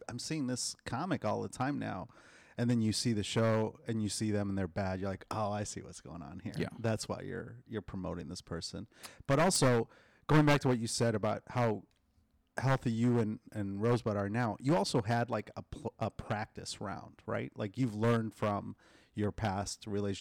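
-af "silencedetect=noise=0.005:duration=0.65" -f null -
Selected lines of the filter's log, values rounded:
silence_start: 11.81
silence_end: 12.57 | silence_duration: 0.76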